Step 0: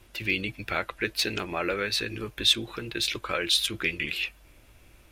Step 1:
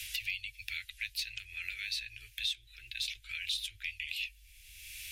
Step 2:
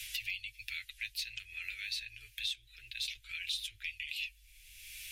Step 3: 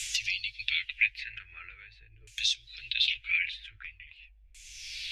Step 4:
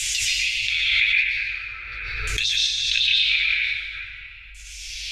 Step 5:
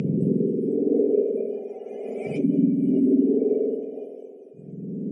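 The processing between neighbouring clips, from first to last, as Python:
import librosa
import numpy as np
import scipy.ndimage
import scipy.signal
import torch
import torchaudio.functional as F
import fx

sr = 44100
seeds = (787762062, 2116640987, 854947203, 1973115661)

y1 = scipy.signal.sosfilt(scipy.signal.cheby2(4, 40, [140.0, 1200.0], 'bandstop', fs=sr, output='sos'), x)
y1 = fx.band_squash(y1, sr, depth_pct=100)
y1 = F.gain(torch.from_numpy(y1), -8.0).numpy()
y2 = y1 + 0.45 * np.pad(y1, (int(6.7 * sr / 1000.0), 0))[:len(y1)]
y2 = F.gain(torch.from_numpy(y2), -2.5).numpy()
y3 = fx.filter_lfo_lowpass(y2, sr, shape='saw_down', hz=0.44, low_hz=590.0, high_hz=7600.0, q=3.9)
y3 = F.gain(torch.from_numpy(y3), 5.0).numpy()
y4 = fx.rev_plate(y3, sr, seeds[0], rt60_s=2.0, hf_ratio=0.75, predelay_ms=105, drr_db=-6.0)
y4 = fx.pre_swell(y4, sr, db_per_s=22.0)
y4 = F.gain(torch.from_numpy(y4), 3.0).numpy()
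y5 = fx.octave_mirror(y4, sr, pivot_hz=1000.0)
y5 = fx.cabinet(y5, sr, low_hz=190.0, low_slope=24, high_hz=6300.0, hz=(330.0, 750.0, 1100.0, 1700.0, 2400.0, 4100.0), db=(-10, -3, -9, -3, 9, -7))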